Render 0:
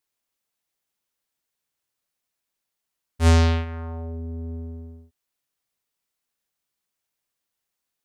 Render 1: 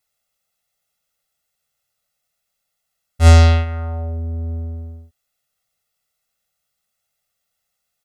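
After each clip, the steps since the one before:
comb filter 1.5 ms, depth 96%
level +3.5 dB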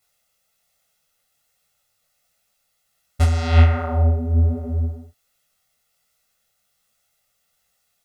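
compressor whose output falls as the input rises −16 dBFS, ratio −1
micro pitch shift up and down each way 45 cents
level +5.5 dB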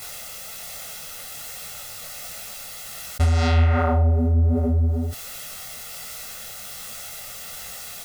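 envelope flattener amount 70%
level −6.5 dB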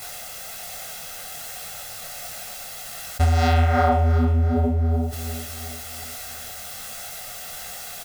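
hollow resonant body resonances 730/1,600 Hz, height 8 dB, ringing for 25 ms
on a send: repeating echo 357 ms, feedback 48%, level −11 dB

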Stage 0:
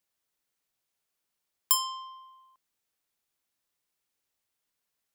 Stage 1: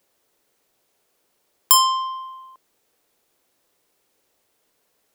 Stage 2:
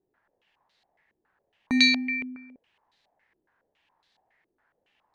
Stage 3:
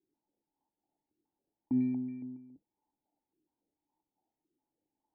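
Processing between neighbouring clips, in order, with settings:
parametric band 450 Hz +11 dB 1.8 octaves; boost into a limiter +14 dB; level −1 dB
ring modulation 1,300 Hz; low-pass on a step sequencer 7.2 Hz 370–4,000 Hz
sub-octave generator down 1 octave, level −4 dB; formant resonators in series u

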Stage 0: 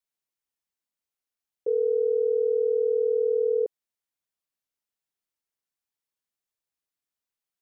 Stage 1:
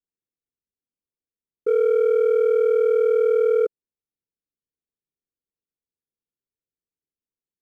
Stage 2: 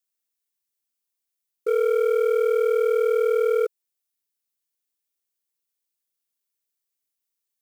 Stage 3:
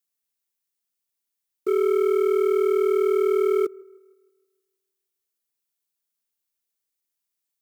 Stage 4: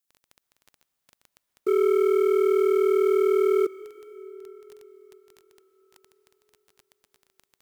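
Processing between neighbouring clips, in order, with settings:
Butterworth low-pass 510 Hz 48 dB per octave; leveller curve on the samples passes 1; level +5 dB
spectral tilt +3.5 dB per octave; level +1.5 dB
frequency shifter −58 Hz; delay with a band-pass on its return 157 ms, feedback 47%, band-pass 720 Hz, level −23 dB
surface crackle 11 per second −35 dBFS; convolution reverb RT60 5.1 s, pre-delay 102 ms, DRR 17.5 dB

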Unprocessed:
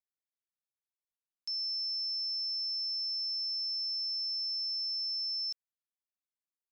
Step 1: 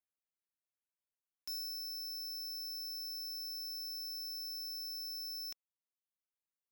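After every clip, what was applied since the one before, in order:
reverb reduction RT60 1.3 s
leveller curve on the samples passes 2
parametric band 4,900 Hz −12 dB 0.59 octaves
level +2.5 dB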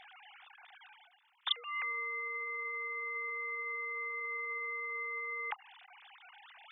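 three sine waves on the formant tracks
reversed playback
upward compression, threshold −47 dBFS
reversed playback
level +4 dB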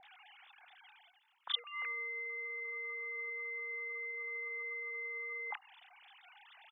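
multiband delay without the direct sound lows, highs 30 ms, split 1,200 Hz
level −2 dB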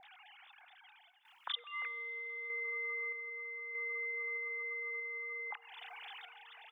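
downward compressor 2.5 to 1, threshold −55 dBFS, peak gain reduction 17 dB
sample-and-hold tremolo 1.6 Hz, depth 75%
on a send at −21 dB: convolution reverb RT60 5.3 s, pre-delay 44 ms
on the sum: level +12 dB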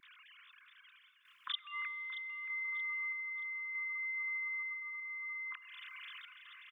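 linear-phase brick-wall band-stop 350–1,000 Hz
on a send: repeating echo 627 ms, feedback 33%, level −13.5 dB

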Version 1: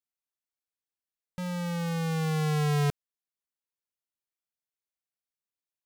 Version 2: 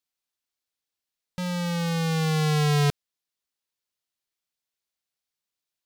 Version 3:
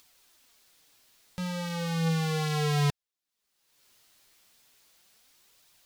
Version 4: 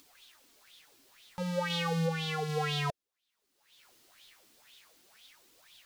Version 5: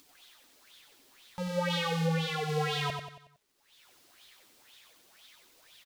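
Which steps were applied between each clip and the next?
parametric band 4,200 Hz +5.5 dB 1.4 octaves; level +4 dB
flanger 0.35 Hz, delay 0.8 ms, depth 9.7 ms, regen +47%; upward compression, threshold −40 dBFS
brickwall limiter −29.5 dBFS, peak gain reduction 9 dB; auto-filter bell 2 Hz 270–3,600 Hz +17 dB; level −1 dB
surface crackle 330 per second −64 dBFS; on a send: repeating echo 92 ms, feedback 45%, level −5.5 dB

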